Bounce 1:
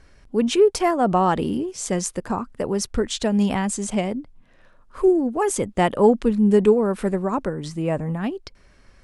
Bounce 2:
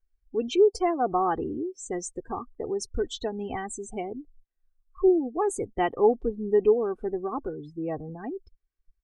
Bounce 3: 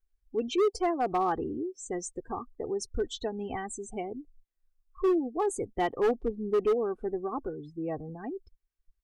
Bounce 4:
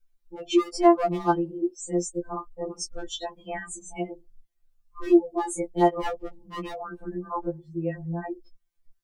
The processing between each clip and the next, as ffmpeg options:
ffmpeg -i in.wav -af "afftdn=noise_reduction=34:noise_floor=-28,aecho=1:1:2.6:0.71,volume=-8dB" out.wav
ffmpeg -i in.wav -af "asoftclip=type=hard:threshold=-18.5dB,volume=-2.5dB" out.wav
ffmpeg -i in.wav -af "afftfilt=real='re*2.83*eq(mod(b,8),0)':imag='im*2.83*eq(mod(b,8),0)':win_size=2048:overlap=0.75,volume=7dB" out.wav

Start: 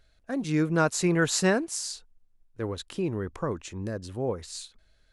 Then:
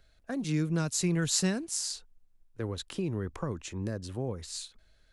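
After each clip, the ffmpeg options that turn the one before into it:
ffmpeg -i in.wav -filter_complex "[0:a]acrossover=split=230|3000[link_01][link_02][link_03];[link_02]acompressor=threshold=-35dB:ratio=6[link_04];[link_01][link_04][link_03]amix=inputs=3:normalize=0" out.wav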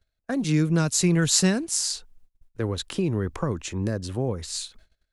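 ffmpeg -i in.wav -af "agate=range=-24dB:threshold=-58dB:ratio=16:detection=peak,volume=7.5dB" out.wav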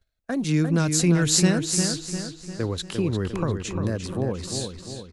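ffmpeg -i in.wav -filter_complex "[0:a]asplit=2[link_01][link_02];[link_02]adelay=350,lowpass=frequency=4500:poles=1,volume=-6dB,asplit=2[link_03][link_04];[link_04]adelay=350,lowpass=frequency=4500:poles=1,volume=0.51,asplit=2[link_05][link_06];[link_06]adelay=350,lowpass=frequency=4500:poles=1,volume=0.51,asplit=2[link_07][link_08];[link_08]adelay=350,lowpass=frequency=4500:poles=1,volume=0.51,asplit=2[link_09][link_10];[link_10]adelay=350,lowpass=frequency=4500:poles=1,volume=0.51,asplit=2[link_11][link_12];[link_12]adelay=350,lowpass=frequency=4500:poles=1,volume=0.51[link_13];[link_01][link_03][link_05][link_07][link_09][link_11][link_13]amix=inputs=7:normalize=0" out.wav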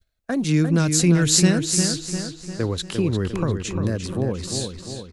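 ffmpeg -i in.wav -af "adynamicequalizer=threshold=0.00891:dfrequency=870:dqfactor=0.95:tfrequency=870:tqfactor=0.95:attack=5:release=100:ratio=0.375:range=2:mode=cutabove:tftype=bell,volume=3dB" out.wav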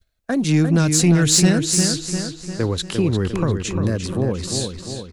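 ffmpeg -i in.wav -af "acontrast=74,volume=-3.5dB" out.wav

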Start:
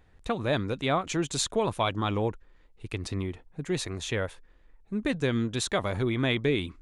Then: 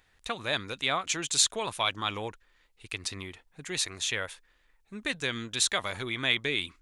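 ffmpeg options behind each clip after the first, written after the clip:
ffmpeg -i in.wav -af "tiltshelf=frequency=970:gain=-9.5,volume=-2.5dB" out.wav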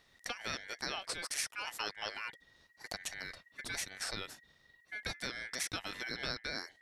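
ffmpeg -i in.wav -af "acompressor=threshold=-40dB:ratio=2.5,aeval=exprs='val(0)*sin(2*PI*1900*n/s)':channel_layout=same,volume=2.5dB" out.wav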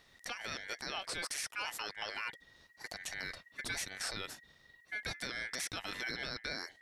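ffmpeg -i in.wav -af "alimiter=level_in=6.5dB:limit=-24dB:level=0:latency=1:release=13,volume=-6.5dB,volume=3dB" out.wav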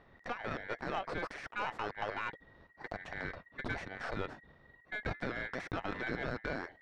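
ffmpeg -i in.wav -af "lowpass=1200,aeval=exprs='0.0237*(cos(1*acos(clip(val(0)/0.0237,-1,1)))-cos(1*PI/2))+0.00266*(cos(4*acos(clip(val(0)/0.0237,-1,1)))-cos(4*PI/2))':channel_layout=same,volume=8dB" out.wav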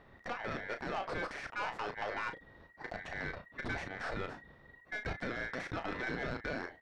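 ffmpeg -i in.wav -filter_complex "[0:a]acrossover=split=4000[link_01][link_02];[link_01]asoftclip=type=tanh:threshold=-32.5dB[link_03];[link_03][link_02]amix=inputs=2:normalize=0,asplit=2[link_04][link_05];[link_05]adelay=34,volume=-9dB[link_06];[link_04][link_06]amix=inputs=2:normalize=0,volume=2dB" out.wav

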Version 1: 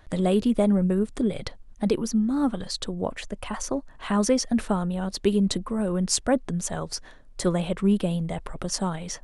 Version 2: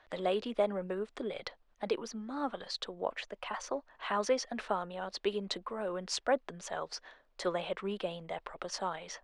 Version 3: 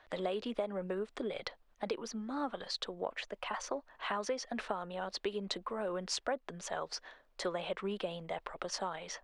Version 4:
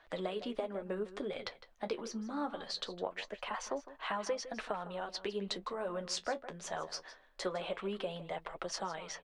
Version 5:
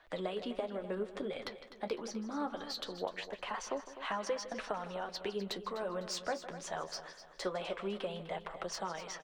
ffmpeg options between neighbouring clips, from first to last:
ffmpeg -i in.wav -filter_complex "[0:a]acrossover=split=420 5000:gain=0.0891 1 0.0708[link_01][link_02][link_03];[link_01][link_02][link_03]amix=inputs=3:normalize=0,volume=-3dB" out.wav
ffmpeg -i in.wav -af "acompressor=threshold=-33dB:ratio=6,volume=1dB" out.wav
ffmpeg -i in.wav -filter_complex "[0:a]asplit=2[link_01][link_02];[link_02]adelay=157.4,volume=-14dB,highshelf=frequency=4000:gain=-3.54[link_03];[link_01][link_03]amix=inputs=2:normalize=0,flanger=delay=6:depth=7.7:regen=-41:speed=0.23:shape=sinusoidal,volume=3dB" out.wav
ffmpeg -i in.wav -filter_complex "[0:a]acrossover=split=750|1400[link_01][link_02][link_03];[link_03]asoftclip=type=tanh:threshold=-32dB[link_04];[link_01][link_02][link_04]amix=inputs=3:normalize=0,aecho=1:1:252|504|756|1008:0.224|0.0895|0.0358|0.0143" out.wav

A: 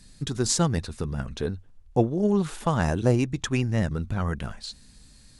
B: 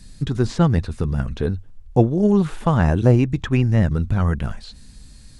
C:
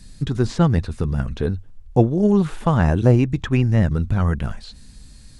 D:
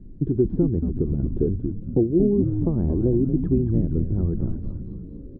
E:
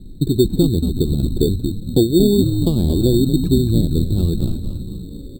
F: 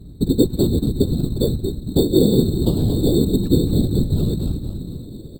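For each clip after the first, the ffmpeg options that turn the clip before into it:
ffmpeg -i in.wav -filter_complex "[0:a]acrossover=split=3300[link_01][link_02];[link_02]acompressor=threshold=-50dB:ratio=4:attack=1:release=60[link_03];[link_01][link_03]amix=inputs=2:normalize=0,lowshelf=frequency=170:gain=7,volume=4dB" out.wav
ffmpeg -i in.wav -af anull out.wav
ffmpeg -i in.wav -filter_complex "[0:a]acompressor=threshold=-22dB:ratio=6,lowpass=frequency=350:width_type=q:width=4.1,asplit=2[link_01][link_02];[link_02]asplit=7[link_03][link_04][link_05][link_06][link_07][link_08][link_09];[link_03]adelay=229,afreqshift=-95,volume=-5dB[link_10];[link_04]adelay=458,afreqshift=-190,volume=-10.5dB[link_11];[link_05]adelay=687,afreqshift=-285,volume=-16dB[link_12];[link_06]adelay=916,afreqshift=-380,volume=-21.5dB[link_13];[link_07]adelay=1145,afreqshift=-475,volume=-27.1dB[link_14];[link_08]adelay=1374,afreqshift=-570,volume=-32.6dB[link_15];[link_09]adelay=1603,afreqshift=-665,volume=-38.1dB[link_16];[link_10][link_11][link_12][link_13][link_14][link_15][link_16]amix=inputs=7:normalize=0[link_17];[link_01][link_17]amix=inputs=2:normalize=0" out.wav
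ffmpeg -i in.wav -af "acrusher=samples=11:mix=1:aa=0.000001,volume=5.5dB" out.wav
ffmpeg -i in.wav -af "afftfilt=real='hypot(re,im)*cos(2*PI*random(0))':imag='hypot(re,im)*sin(2*PI*random(1))':win_size=512:overlap=0.75,volume=4.5dB" out.wav

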